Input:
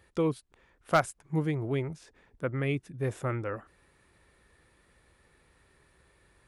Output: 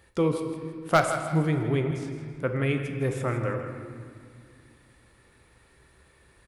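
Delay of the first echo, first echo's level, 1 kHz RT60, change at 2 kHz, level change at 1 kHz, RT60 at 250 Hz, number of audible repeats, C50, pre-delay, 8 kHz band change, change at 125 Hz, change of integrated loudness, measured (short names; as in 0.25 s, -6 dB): 0.162 s, -11.5 dB, 2.0 s, +4.5 dB, +4.5 dB, 3.3 s, 2, 5.5 dB, 4 ms, +5.5 dB, +5.0 dB, +4.5 dB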